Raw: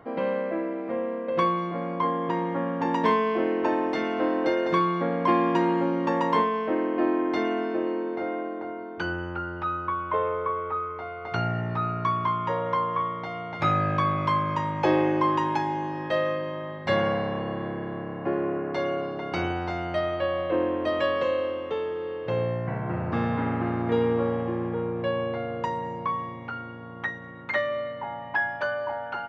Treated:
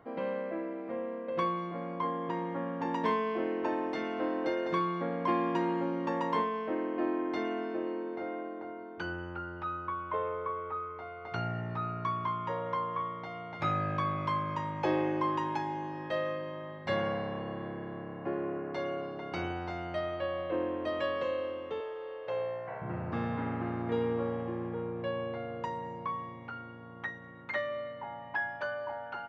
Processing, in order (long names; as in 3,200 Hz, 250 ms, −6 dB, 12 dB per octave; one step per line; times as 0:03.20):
0:21.80–0:22.82: low shelf with overshoot 370 Hz −13.5 dB, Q 1.5
level −7.5 dB